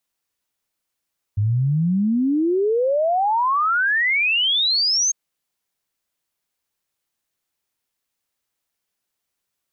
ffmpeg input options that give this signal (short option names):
-f lavfi -i "aevalsrc='0.158*clip(min(t,3.75-t)/0.01,0,1)*sin(2*PI*99*3.75/log(6500/99)*(exp(log(6500/99)*t/3.75)-1))':d=3.75:s=44100"